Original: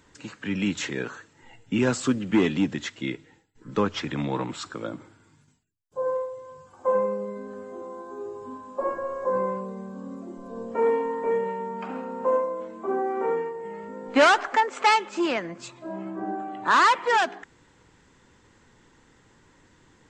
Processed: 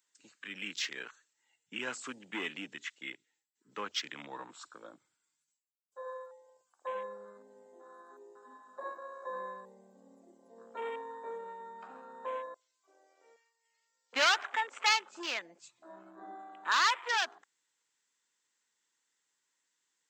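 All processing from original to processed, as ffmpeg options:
-filter_complex "[0:a]asettb=1/sr,asplit=3[s0][s1][s2];[s0]atrim=end=12.544[s3];[s1]atrim=start=12.54:end=14.13,asetpts=PTS-STARTPTS,afade=t=in:d=0.004:c=qsin,afade=t=out:st=1.586:d=0.004:c=qsin,bandpass=f=5100:t=q:w=2.1,acontrast=84[s4];[s2]atrim=start=14.126[s5];[s3][s4]acrossfade=d=0.004:c1=hsin:c2=qsin[s6];[s6][s5]acrossfade=d=0.004:c1=qsin:c2=hsin,afwtdn=0.0158,highpass=120,aderivative,volume=1.88"

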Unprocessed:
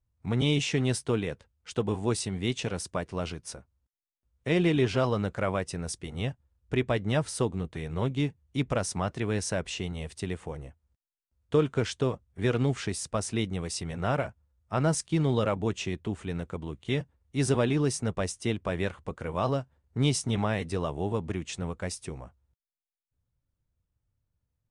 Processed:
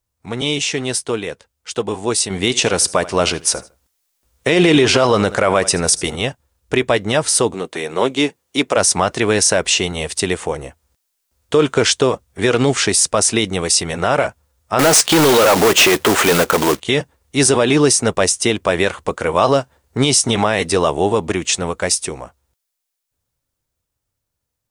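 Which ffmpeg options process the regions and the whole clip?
-filter_complex "[0:a]asettb=1/sr,asplit=3[s0][s1][s2];[s0]atrim=end=2.304[s3];[s1]atrim=start=2.3:end=6.16,asetpts=PTS-STARTPTS,afade=t=in:d=0.004:c=qsin,afade=t=out:st=3.856:d=0.004:c=qsin,aecho=1:1:78|156:0.0891|0.025,atrim=end_sample=170226,acontrast=52[s4];[s2]atrim=start=6.156[s5];[s3][s4]acrossfade=d=0.004:c1=hsin:c2=qsin[s6];[s6][s5]acrossfade=d=0.004:c1=qsin:c2=hsin,asettb=1/sr,asplit=3[s7][s8][s9];[s7]atrim=end=7.544[s10];[s8]atrim=start=7.54:end=8.77,asetpts=PTS-STARTPTS,afade=t=in:d=0.004:c=qsin,afade=t=out:st=1.226:d=0.004:c=qsin,highpass=300,lowshelf=f=390:g=4[s11];[s9]atrim=start=8.766[s12];[s10][s11]acrossfade=d=0.004:c1=hsin:c2=qsin[s13];[s13][s12]acrossfade=d=0.004:c1=qsin:c2=hsin,asettb=1/sr,asplit=3[s14][s15][s16];[s14]atrim=end=14.794[s17];[s15]atrim=start=14.79:end=16.8,asetpts=PTS-STARTPTS,afade=t=in:d=0.004:c=qsin,afade=t=out:st=2.006:d=0.004:c=qsin,asplit=2[s18][s19];[s19]highpass=f=720:p=1,volume=28.2,asoftclip=type=tanh:threshold=0.211[s20];[s18][s20]amix=inputs=2:normalize=0,lowpass=f=1800:p=1,volume=0.501,acrusher=bits=3:mode=log:mix=0:aa=0.000001[s21];[s16]atrim=start=16.796[s22];[s17][s21]acrossfade=d=0.004:c1=hsin:c2=qsin[s23];[s23][s22]acrossfade=d=0.004:c1=qsin:c2=hsin,bass=f=250:g=-12,treble=f=4000:g=6,dynaudnorm=f=170:g=31:m=3.16,alimiter=limit=0.251:level=0:latency=1:release=47,volume=2.82"

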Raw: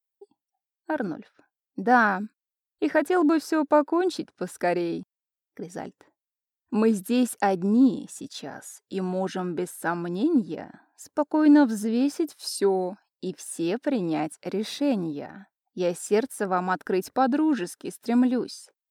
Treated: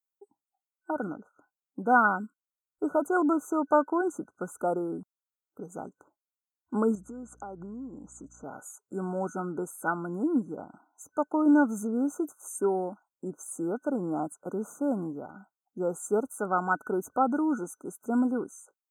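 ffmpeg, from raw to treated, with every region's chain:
-filter_complex "[0:a]asettb=1/sr,asplit=3[s0][s1][s2];[s0]atrim=end=6.954[s3];[s1]atrim=start=6.95:end=8.44,asetpts=PTS-STARTPTS,afade=t=in:d=0.004:c=qsin,afade=t=out:st=1.486:d=0.004:c=qsin,lowpass=f=7000:w=0.5412,lowpass=f=7000:w=1.3066,acompressor=threshold=0.0178:ratio=5:attack=3.2:release=140:knee=1:detection=peak,aeval=exprs='val(0)+0.002*(sin(2*PI*60*n/s)+sin(2*PI*2*60*n/s)/2+sin(2*PI*3*60*n/s)/3+sin(2*PI*4*60*n/s)/4+sin(2*PI*5*60*n/s)/5)':c=same[s4];[s2]atrim=start=8.436[s5];[s3][s4]acrossfade=d=0.004:c1=hsin:c2=qsin[s6];[s6][s5]acrossfade=d=0.004:c1=qsin:c2=hsin,equalizer=f=2500:w=0.82:g=13,afftfilt=real='re*(1-between(b*sr/4096,1500,6100))':imag='im*(1-between(b*sr/4096,1500,6100))':win_size=4096:overlap=0.75,volume=0.562"

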